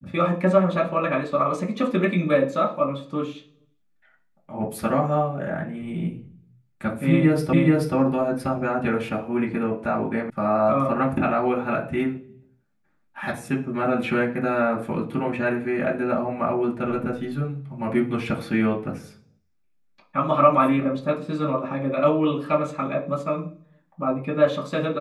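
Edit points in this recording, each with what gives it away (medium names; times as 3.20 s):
7.53 s: repeat of the last 0.43 s
10.30 s: sound stops dead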